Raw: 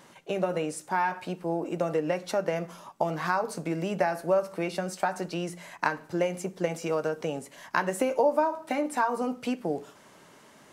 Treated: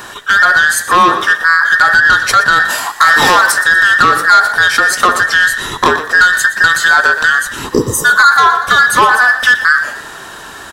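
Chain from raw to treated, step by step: every band turned upside down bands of 2 kHz; 2.65–3.52 s: treble shelf 2.1 kHz +11 dB; 7.75–8.03 s: spectral replace 500–4700 Hz before; saturation -24 dBFS, distortion -10 dB; frequency-shifting echo 119 ms, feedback 42%, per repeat +46 Hz, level -14 dB; loudness maximiser +25 dB; trim -1 dB

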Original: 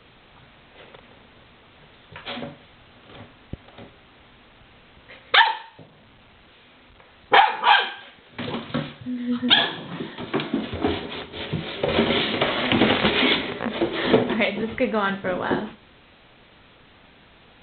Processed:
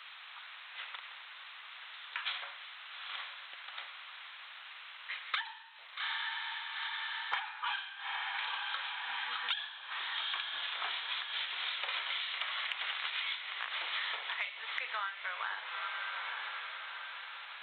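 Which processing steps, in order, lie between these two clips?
high-pass 1.1 kHz 24 dB/octave; on a send: echo that smears into a reverb 853 ms, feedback 45%, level -14 dB; on the sum: compression 16:1, threshold -39 dBFS, peak gain reduction 28.5 dB; trim +5 dB

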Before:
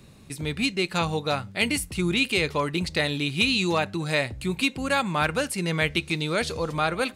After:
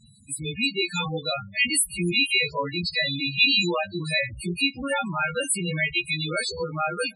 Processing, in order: partials quantised in pitch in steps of 2 st; loudest bins only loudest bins 8

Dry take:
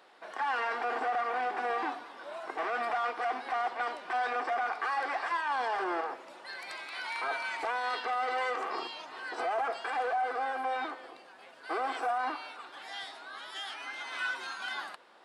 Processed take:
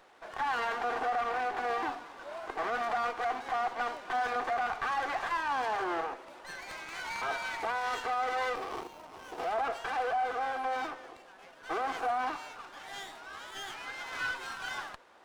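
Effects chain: 8.55–9.52 s: median filter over 25 samples; sliding maximum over 5 samples

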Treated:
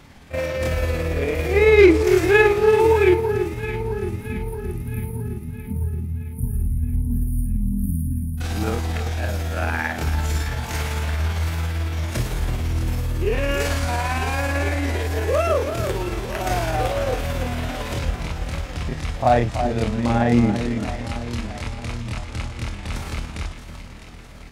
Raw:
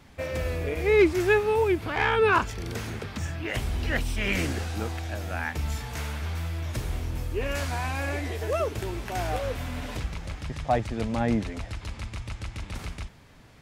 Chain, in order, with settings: spectral selection erased 1.75–4.67 s, 270–9200 Hz; echo whose repeats swap between lows and highs 178 ms, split 1.5 kHz, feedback 73%, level -8 dB; granular stretch 1.8×, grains 112 ms; trim +7.5 dB

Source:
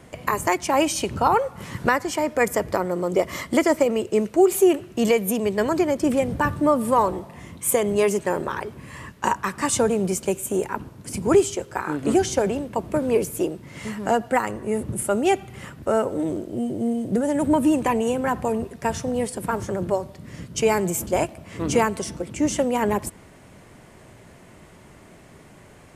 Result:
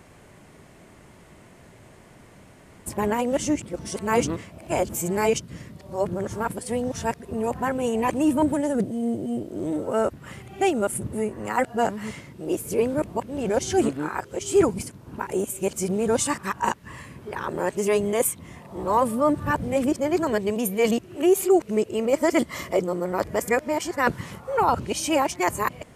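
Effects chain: reverse the whole clip; trim -2 dB

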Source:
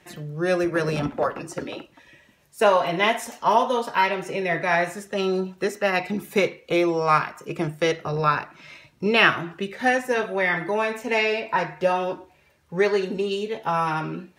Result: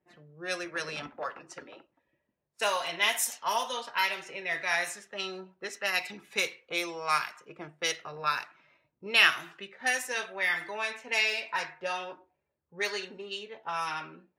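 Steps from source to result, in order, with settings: pre-emphasis filter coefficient 0.97; level-controlled noise filter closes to 400 Hz, open at -33 dBFS; trim +7 dB

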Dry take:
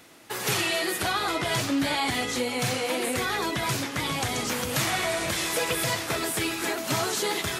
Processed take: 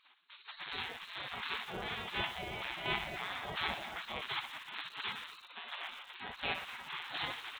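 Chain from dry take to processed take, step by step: LPC vocoder at 8 kHz pitch kept; resonant low shelf 740 Hz +11 dB, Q 1.5; on a send: filtered feedback delay 654 ms, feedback 25%, low-pass 1 kHz, level -7 dB; on the sum: square tremolo 1.4 Hz, depth 60%, duty 15%; early reflections 26 ms -10.5 dB, 62 ms -8.5 dB; 5.43–6.16 s: frequency shift -190 Hz; dynamic bell 160 Hz, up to -6 dB, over -39 dBFS, Q 2.2; spectral gate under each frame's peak -30 dB weak; bit-crushed delay 117 ms, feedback 80%, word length 7-bit, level -15 dB

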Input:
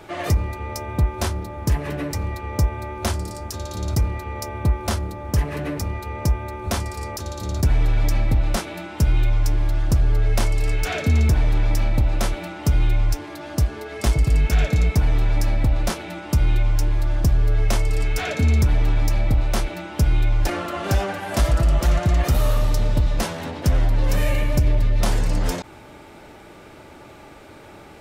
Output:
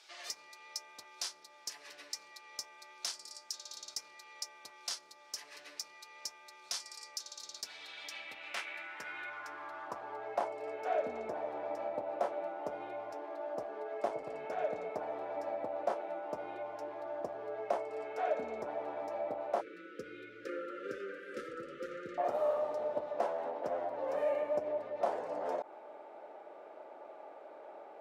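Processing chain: high-pass 370 Hz 12 dB/octave; band-pass sweep 5 kHz -> 640 Hz, 7.48–10.62 s; 19.61–22.18 s: brick-wall FIR band-stop 550–1200 Hz; dynamic bell 3.6 kHz, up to -4 dB, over -53 dBFS, Q 0.8

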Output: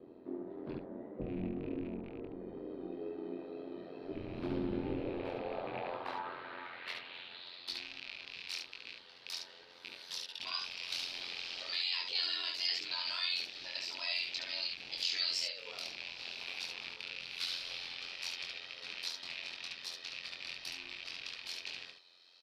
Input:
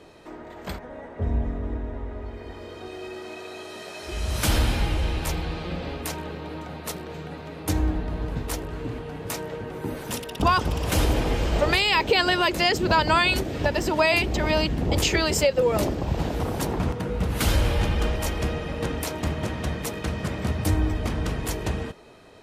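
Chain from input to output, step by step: rattle on loud lows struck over -29 dBFS, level -19 dBFS; resonant high shelf 5.4 kHz -8.5 dB, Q 3; peak limiter -16 dBFS, peak gain reduction 9.5 dB; band-pass sweep 300 Hz -> 5.6 kHz, 4.81–7.85 s; wow and flutter 28 cents; ring modulator 44 Hz; early reflections 23 ms -3 dB, 71 ms -3.5 dB; trim +1 dB

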